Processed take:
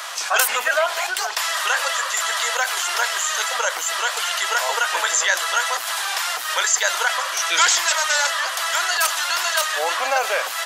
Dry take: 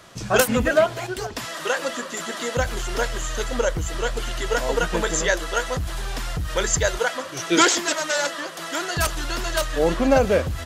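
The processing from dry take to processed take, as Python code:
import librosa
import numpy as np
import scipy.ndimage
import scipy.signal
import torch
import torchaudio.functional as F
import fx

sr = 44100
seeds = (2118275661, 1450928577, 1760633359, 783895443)

y = scipy.signal.sosfilt(scipy.signal.butter(4, 790.0, 'highpass', fs=sr, output='sos'), x)
y = fx.high_shelf(y, sr, hz=12000.0, db=4.0)
y = fx.env_flatten(y, sr, amount_pct=50)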